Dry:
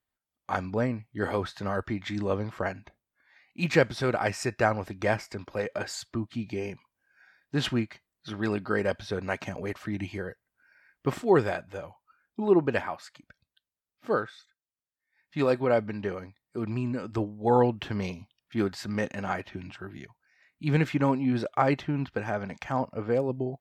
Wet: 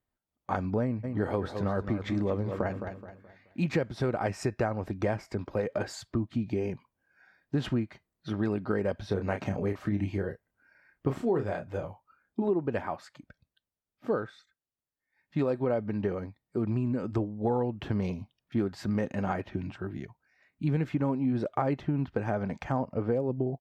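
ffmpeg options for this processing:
-filter_complex "[0:a]asplit=3[a][b][c];[a]afade=t=out:st=1.03:d=0.02[d];[b]aecho=1:1:213|426|639|852:0.282|0.101|0.0365|0.0131,afade=t=in:st=1.03:d=0.02,afade=t=out:st=3.7:d=0.02[e];[c]afade=t=in:st=3.7:d=0.02[f];[d][e][f]amix=inputs=3:normalize=0,asettb=1/sr,asplit=3[g][h][i];[g]atrim=end=9.084[j];[h]atrim=start=9.08:end=12.49,asetpts=PTS-STARTPTS,afade=t=in:d=0.004:c=qsin,afade=t=out:st=3.406:d=0.004:c=qsin,asplit=2[k][l];[l]adelay=30,volume=-7dB[m];[k][m]amix=inputs=2:normalize=0,atrim=end_sample=150381[n];[i]atrim=start=12.486[o];[j][n]acrossfade=d=0.004:c1=hsin:c2=qsin[p];[p][o]acrossfade=d=0.004:c1=qsin:c2=hsin,tiltshelf=f=1.1k:g=6,acompressor=threshold=-25dB:ratio=6"

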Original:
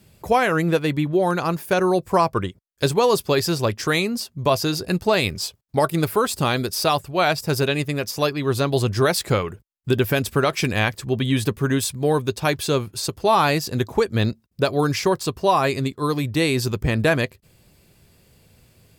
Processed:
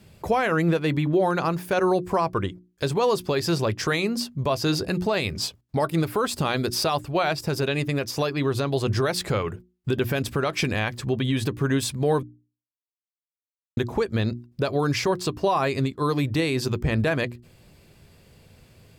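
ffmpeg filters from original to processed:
-filter_complex "[0:a]asplit=3[a][b][c];[a]atrim=end=12.23,asetpts=PTS-STARTPTS,afade=t=out:st=12.226:d=0.004:c=hsin[d];[b]atrim=start=12.23:end=13.77,asetpts=PTS-STARTPTS,volume=0[e];[c]atrim=start=13.77,asetpts=PTS-STARTPTS,afade=t=in:d=0.004:c=hsin[f];[d][e][f]concat=n=3:v=0:a=1,highshelf=f=7k:g=-9.5,bandreject=f=60:t=h:w=6,bandreject=f=120:t=h:w=6,bandreject=f=180:t=h:w=6,bandreject=f=240:t=h:w=6,bandreject=f=300:t=h:w=6,bandreject=f=360:t=h:w=6,alimiter=limit=-16dB:level=0:latency=1:release=169,volume=3dB"

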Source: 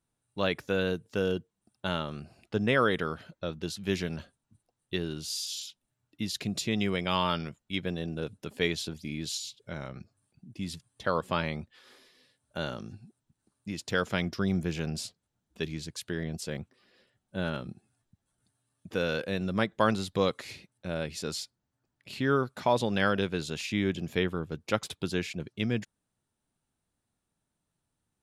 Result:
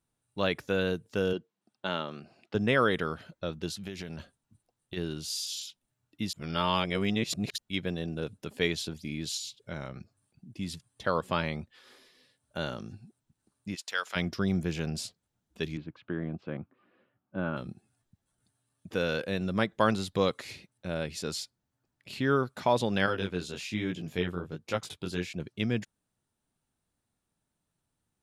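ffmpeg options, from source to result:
-filter_complex "[0:a]asettb=1/sr,asplit=3[a][b][c];[a]atrim=end=1.334[d];[b]atrim=start=1.33:end=2.55,asetpts=PTS-STARTPTS,afade=t=in:d=0.004:c=qsin,afade=t=out:st=1.216:d=0.004:c=qsin,highpass=210,lowpass=5.5k[e];[c]atrim=start=2.546[f];[d][e]acrossfade=d=0.004:c1=hsin:c2=qsin[g];[g][f]acrossfade=d=0.004:c1=qsin:c2=hsin,asplit=3[h][i][j];[h]afade=t=out:st=3.79:d=0.02[k];[i]acompressor=threshold=-34dB:ratio=12:attack=3.2:release=140:knee=1:detection=peak,afade=t=in:st=3.79:d=0.02,afade=t=out:st=4.96:d=0.02[l];[j]afade=t=in:st=4.96:d=0.02[m];[k][l][m]amix=inputs=3:normalize=0,asplit=3[n][o][p];[n]afade=t=out:st=13.74:d=0.02[q];[o]highpass=1k,afade=t=in:st=13.74:d=0.02,afade=t=out:st=14.15:d=0.02[r];[p]afade=t=in:st=14.15:d=0.02[s];[q][r][s]amix=inputs=3:normalize=0,asettb=1/sr,asplit=3[t][u][v];[t]atrim=end=15.774[w];[u]atrim=start=15.77:end=17.57,asetpts=PTS-STARTPTS,afade=t=in:d=0.004:c=qsin,afade=t=out:st=1.796:d=0.004:c=qsin,highpass=110,equalizer=f=300:t=q:w=4:g=6,equalizer=f=430:t=q:w=4:g=-5,equalizer=f=1.2k:t=q:w=4:g=5,equalizer=f=1.9k:t=q:w=4:g=-8,lowpass=f=2.3k:w=0.5412,lowpass=f=2.3k:w=1.3066[x];[v]atrim=start=17.566[y];[w][x]acrossfade=d=0.004:c1=hsin:c2=qsin[z];[z][y]acrossfade=d=0.004:c1=qsin:c2=hsin,asettb=1/sr,asplit=3[aa][ab][ac];[aa]atrim=end=23.064[ad];[ab]atrim=start=23.06:end=25.33,asetpts=PTS-STARTPTS,afade=t=in:d=0.004:c=qsin,afade=t=out:st=2.266:d=0.004:c=qsin,flanger=delay=17:depth=6.2:speed=1.2[ae];[ac]atrim=start=25.326[af];[ad][ae]acrossfade=d=0.004:c1=hsin:c2=qsin[ag];[ag][af]acrossfade=d=0.004:c1=qsin:c2=hsin,asplit=3[ah][ai][aj];[ah]atrim=end=6.332[ak];[ai]atrim=start=6.328:end=7.582,asetpts=PTS-STARTPTS,areverse[al];[aj]atrim=start=7.578[am];[ak][al]acrossfade=d=0.004:c1=hsin:c2=hsin[an];[an][am]acrossfade=d=0.004:c1=hsin:c2=hsin"

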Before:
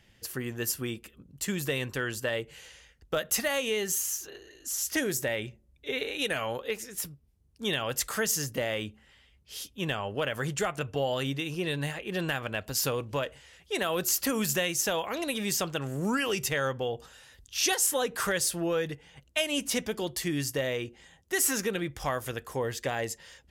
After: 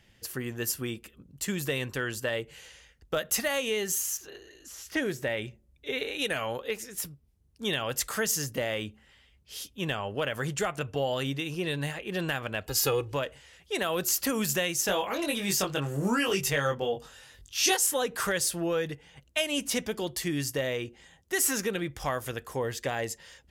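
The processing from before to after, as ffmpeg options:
-filter_complex "[0:a]asettb=1/sr,asplit=3[a][b][c];[a]atrim=end=4.174[d];[b]atrim=start=4.17:end=5.37,asetpts=PTS-STARTPTS,afade=t=in:d=0.004:c=qsin,afade=t=out:st=1.196:d=0.004:c=qsin,acrossover=split=3800[e][f];[f]acompressor=threshold=-47dB:ratio=4:attack=1:release=60[g];[e][g]amix=inputs=2:normalize=0[h];[c]atrim=start=5.366[i];[d][h]acrossfade=d=0.004:c1=hsin:c2=qsin[j];[j][i]acrossfade=d=0.004:c1=qsin:c2=hsin,asettb=1/sr,asplit=3[k][l][m];[k]atrim=end=12.664[n];[l]atrim=start=12.66:end=13.13,asetpts=PTS-STARTPTS,afade=t=in:d=0.004:c=qsin,afade=t=out:st=0.466:d=0.004:c=qsin,aecho=1:1:2.4:0.95,atrim=end_sample=20727[o];[m]atrim=start=13.126[p];[n][o]acrossfade=d=0.004:c1=hsin:c2=qsin[q];[q][p]acrossfade=d=0.004:c1=qsin:c2=hsin,asettb=1/sr,asplit=3[r][s][t];[r]atrim=end=14.864[u];[s]atrim=start=14.86:end=17.77,asetpts=PTS-STARTPTS,afade=t=in:d=0.004:c=qsin,afade=t=out:st=2.906:d=0.004:c=qsin,asplit=2[v][w];[w]adelay=21,volume=-3dB[x];[v][x]amix=inputs=2:normalize=0,atrim=end_sample=128331[y];[t]atrim=start=17.766[z];[u][y]acrossfade=d=0.004:c1=hsin:c2=qsin[aa];[aa][z]acrossfade=d=0.004:c1=qsin:c2=hsin"

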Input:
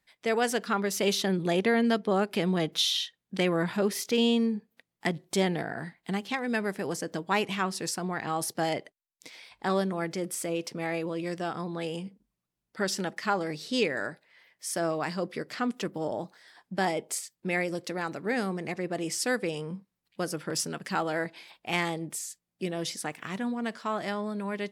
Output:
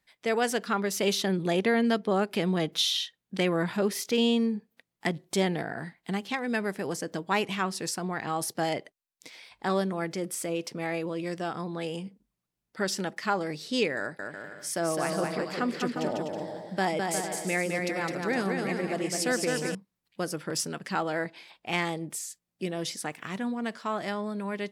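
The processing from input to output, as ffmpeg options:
-filter_complex "[0:a]asettb=1/sr,asplit=3[a][b][c];[a]atrim=end=13.984[d];[b]atrim=start=13.98:end=19.75,asetpts=PTS-STARTPTS,afade=t=in:d=0.004:c=qsin,afade=t=out:st=5.766:d=0.004:c=qsin,aecho=1:1:210|357|459.9|531.9|582.4:0.631|0.398|0.251|0.158|0.1,atrim=end_sample=254457[e];[c]atrim=start=19.746[f];[d][e]acrossfade=d=0.004:c1=hsin:c2=qsin[g];[g][f]acrossfade=d=0.004:c1=qsin:c2=hsin,asettb=1/sr,asplit=3[h][i][j];[h]atrim=end=20.794[k];[i]atrim=start=20.79:end=21.89,asetpts=PTS-STARTPTS,afade=t=in:d=0.004:c=qsin,afade=t=out:st=1.096:d=0.004:c=qsin,highshelf=f=11k:g=-8.5[l];[j]atrim=start=21.886[m];[k][l]acrossfade=d=0.004:c1=hsin:c2=qsin[n];[n][m]acrossfade=d=0.004:c1=qsin:c2=hsin"

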